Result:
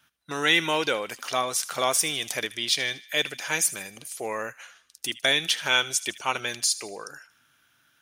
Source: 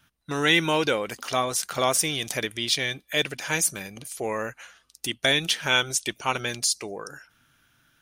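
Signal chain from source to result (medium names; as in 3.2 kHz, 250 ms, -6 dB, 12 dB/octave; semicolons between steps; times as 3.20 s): high-pass 54 Hz; bass shelf 300 Hz -10 dB; on a send: feedback echo behind a high-pass 77 ms, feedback 48%, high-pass 1.9 kHz, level -16 dB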